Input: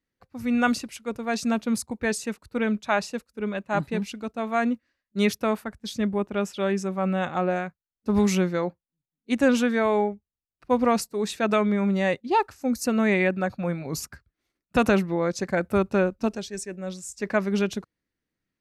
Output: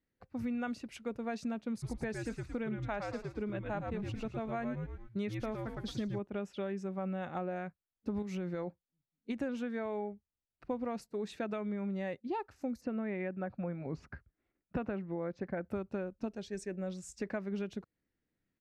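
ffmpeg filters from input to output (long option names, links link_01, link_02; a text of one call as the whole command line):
ffmpeg -i in.wav -filter_complex "[0:a]asplit=3[link_01][link_02][link_03];[link_01]afade=type=out:start_time=1.82:duration=0.02[link_04];[link_02]asplit=5[link_05][link_06][link_07][link_08][link_09];[link_06]adelay=111,afreqshift=-88,volume=-5dB[link_10];[link_07]adelay=222,afreqshift=-176,volume=-14.6dB[link_11];[link_08]adelay=333,afreqshift=-264,volume=-24.3dB[link_12];[link_09]adelay=444,afreqshift=-352,volume=-33.9dB[link_13];[link_05][link_10][link_11][link_12][link_13]amix=inputs=5:normalize=0,afade=type=in:start_time=1.82:duration=0.02,afade=type=out:start_time=6.18:duration=0.02[link_14];[link_03]afade=type=in:start_time=6.18:duration=0.02[link_15];[link_04][link_14][link_15]amix=inputs=3:normalize=0,asettb=1/sr,asplit=3[link_16][link_17][link_18];[link_16]atrim=end=8.224[link_19];[link_17]atrim=start=8.22:end=9.42,asetpts=PTS-STARTPTS,afade=type=in:duration=0.004:curve=qsin,afade=type=out:start_time=1.196:duration=0.004:curve=qsin,acompressor=threshold=-23dB:ratio=6:attack=3.2:release=140:knee=1:detection=peak[link_20];[link_18]atrim=start=9.416[link_21];[link_19][link_20]acrossfade=duration=0.004:curve1=hsin:curve2=qsin[link_22];[link_22][link_21]acrossfade=duration=0.004:curve1=qsin:curve2=hsin,asplit=3[link_23][link_24][link_25];[link_23]afade=type=out:start_time=12.8:duration=0.02[link_26];[link_24]lowpass=2400,afade=type=in:start_time=12.8:duration=0.02,afade=type=out:start_time=15.68:duration=0.02[link_27];[link_25]afade=type=in:start_time=15.68:duration=0.02[link_28];[link_26][link_27][link_28]amix=inputs=3:normalize=0,lowpass=frequency=1900:poles=1,equalizer=frequency=1100:width=2.7:gain=-4,acompressor=threshold=-35dB:ratio=6" out.wav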